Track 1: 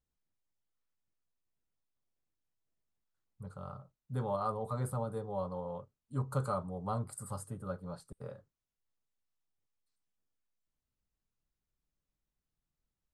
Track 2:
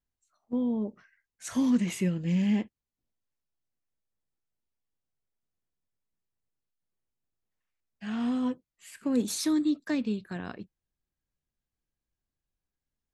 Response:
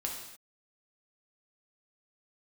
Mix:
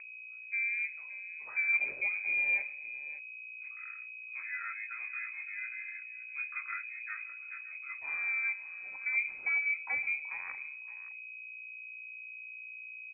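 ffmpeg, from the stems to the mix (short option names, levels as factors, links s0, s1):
-filter_complex "[0:a]flanger=delay=19:depth=5.3:speed=1.7,adelay=200,volume=0.708,asplit=2[s0][s1];[s1]volume=0.141[s2];[1:a]aeval=exprs='val(0)+0.00794*(sin(2*PI*60*n/s)+sin(2*PI*2*60*n/s)/2+sin(2*PI*3*60*n/s)/3+sin(2*PI*4*60*n/s)/4+sin(2*PI*5*60*n/s)/5)':c=same,volume=0.422,asplit=3[s3][s4][s5];[s4]volume=0.299[s6];[s5]volume=0.237[s7];[2:a]atrim=start_sample=2205[s8];[s6][s8]afir=irnorm=-1:irlink=0[s9];[s2][s7]amix=inputs=2:normalize=0,aecho=0:1:567:1[s10];[s0][s3][s9][s10]amix=inputs=4:normalize=0,acompressor=mode=upward:threshold=0.00447:ratio=2.5,lowpass=f=2200:t=q:w=0.5098,lowpass=f=2200:t=q:w=0.6013,lowpass=f=2200:t=q:w=0.9,lowpass=f=2200:t=q:w=2.563,afreqshift=-2600"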